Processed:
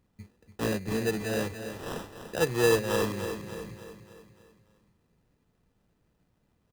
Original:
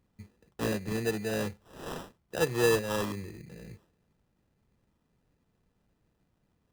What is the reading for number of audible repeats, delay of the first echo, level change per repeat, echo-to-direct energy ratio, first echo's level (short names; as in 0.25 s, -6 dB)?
5, 0.293 s, -6.0 dB, -8.0 dB, -9.0 dB